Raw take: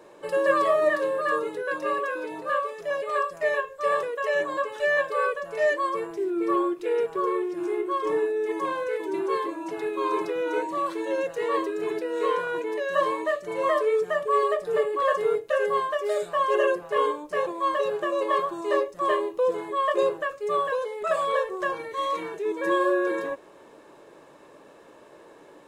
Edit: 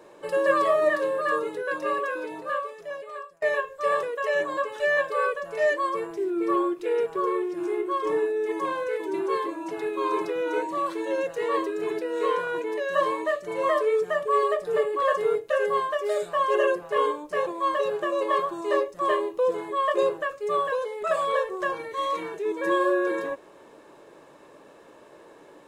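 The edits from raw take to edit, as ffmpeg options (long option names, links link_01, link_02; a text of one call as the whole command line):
ffmpeg -i in.wav -filter_complex "[0:a]asplit=2[link_01][link_02];[link_01]atrim=end=3.42,asetpts=PTS-STARTPTS,afade=type=out:start_time=2.19:duration=1.23:silence=0.0707946[link_03];[link_02]atrim=start=3.42,asetpts=PTS-STARTPTS,afade=type=in:duration=0.004:curve=hsin:silence=0.0707946[link_04];[link_03][link_04]concat=n=2:v=0:a=1" out.wav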